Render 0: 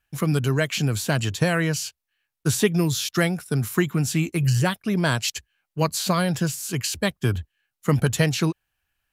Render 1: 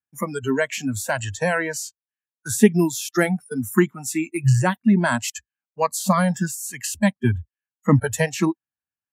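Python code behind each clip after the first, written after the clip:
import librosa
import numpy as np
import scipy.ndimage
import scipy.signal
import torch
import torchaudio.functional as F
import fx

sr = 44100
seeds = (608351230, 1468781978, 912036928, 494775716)

y = scipy.signal.sosfilt(scipy.signal.butter(2, 82.0, 'highpass', fs=sr, output='sos'), x)
y = fx.noise_reduce_blind(y, sr, reduce_db=23)
y = fx.graphic_eq(y, sr, hz=(125, 250, 1000, 2000, 4000, 8000), db=(5, 12, 6, 3, -9, 5))
y = F.gain(torch.from_numpy(y), -1.0).numpy()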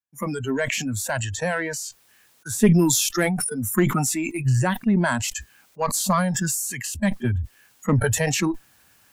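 y = fx.diode_clip(x, sr, knee_db=-7.5)
y = fx.sustainer(y, sr, db_per_s=28.0)
y = F.gain(torch.from_numpy(y), -3.0).numpy()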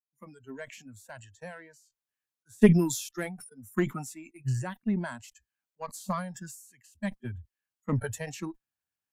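y = fx.upward_expand(x, sr, threshold_db=-35.0, expansion=2.5)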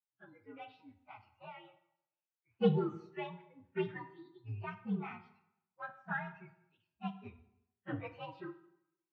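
y = fx.partial_stretch(x, sr, pct=122)
y = fx.cabinet(y, sr, low_hz=120.0, low_slope=24, high_hz=3000.0, hz=(140.0, 230.0, 550.0, 940.0, 1600.0), db=(-10, -5, -3, 9, 5))
y = fx.rev_plate(y, sr, seeds[0], rt60_s=0.8, hf_ratio=0.8, predelay_ms=0, drr_db=9.0)
y = F.gain(torch.from_numpy(y), -5.0).numpy()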